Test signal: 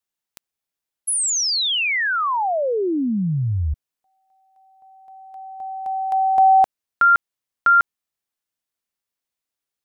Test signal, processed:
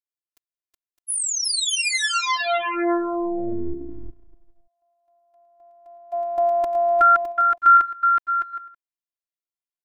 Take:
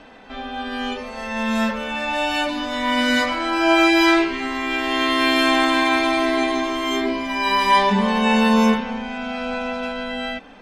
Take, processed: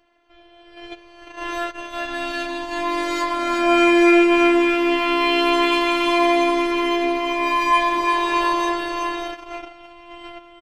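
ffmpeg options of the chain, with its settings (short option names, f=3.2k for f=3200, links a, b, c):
-af "aecho=1:1:370|610.5|766.8|868.4|934.5:0.631|0.398|0.251|0.158|0.1,agate=range=-14dB:threshold=-24dB:ratio=16:release=102:detection=peak,afftfilt=real='hypot(re,im)*cos(PI*b)':imag='0':win_size=512:overlap=0.75"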